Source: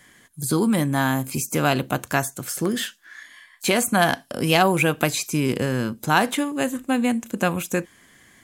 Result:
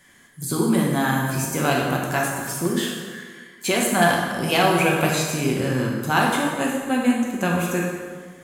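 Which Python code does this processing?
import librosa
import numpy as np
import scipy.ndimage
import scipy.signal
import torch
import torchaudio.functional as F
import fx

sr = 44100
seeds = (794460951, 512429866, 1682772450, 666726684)

y = fx.rev_plate(x, sr, seeds[0], rt60_s=1.7, hf_ratio=0.7, predelay_ms=0, drr_db=-2.5)
y = F.gain(torch.from_numpy(y), -3.5).numpy()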